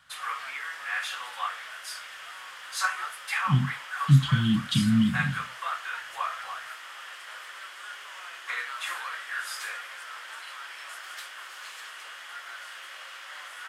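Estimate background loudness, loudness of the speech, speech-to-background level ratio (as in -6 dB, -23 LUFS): -35.0 LUFS, -24.5 LUFS, 10.5 dB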